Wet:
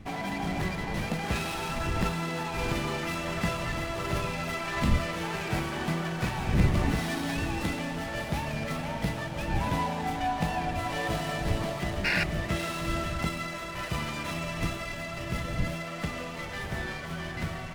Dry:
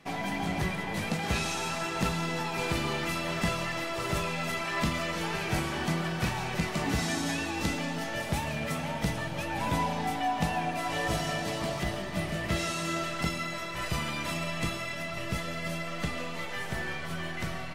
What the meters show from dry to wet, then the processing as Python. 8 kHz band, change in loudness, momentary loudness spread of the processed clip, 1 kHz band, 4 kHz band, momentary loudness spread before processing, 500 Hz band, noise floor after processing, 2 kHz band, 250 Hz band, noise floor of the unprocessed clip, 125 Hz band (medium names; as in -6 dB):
-3.5 dB, +0.5 dB, 7 LU, 0.0 dB, -1.5 dB, 5 LU, 0.0 dB, -37 dBFS, 0.0 dB, +1.0 dB, -36 dBFS, +2.5 dB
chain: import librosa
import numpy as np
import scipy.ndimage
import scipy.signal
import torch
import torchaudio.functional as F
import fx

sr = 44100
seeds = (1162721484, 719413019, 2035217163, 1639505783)

y = fx.dmg_wind(x, sr, seeds[0], corner_hz=120.0, level_db=-35.0)
y = fx.spec_paint(y, sr, seeds[1], shape='noise', start_s=12.04, length_s=0.2, low_hz=1400.0, high_hz=2900.0, level_db=-26.0)
y = fx.running_max(y, sr, window=5)